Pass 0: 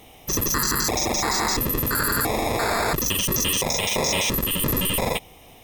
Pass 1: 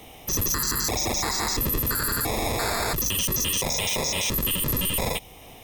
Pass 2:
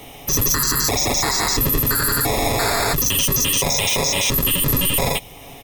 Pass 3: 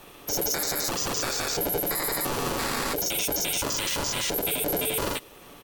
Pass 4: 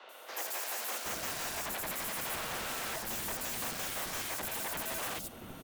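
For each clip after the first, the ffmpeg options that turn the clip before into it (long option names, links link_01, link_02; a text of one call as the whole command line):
ffmpeg -i in.wav -filter_complex "[0:a]acrossover=split=120|3000[link_01][link_02][link_03];[link_02]acompressor=threshold=-37dB:ratio=1.5[link_04];[link_01][link_04][link_03]amix=inputs=3:normalize=0,alimiter=limit=-18.5dB:level=0:latency=1:release=20,volume=2.5dB" out.wav
ffmpeg -i in.wav -af "aecho=1:1:7.2:0.42,volume=6dB" out.wav
ffmpeg -i in.wav -af "aeval=exprs='val(0)*sin(2*PI*440*n/s)':channel_layout=same,volume=-6dB" out.wav
ffmpeg -i in.wav -filter_complex "[0:a]afreqshift=210,aeval=exprs='0.0335*(abs(mod(val(0)/0.0335+3,4)-2)-1)':channel_layout=same,acrossover=split=380|4700[link_01][link_02][link_03];[link_03]adelay=90[link_04];[link_01]adelay=770[link_05];[link_05][link_02][link_04]amix=inputs=3:normalize=0,volume=-2.5dB" out.wav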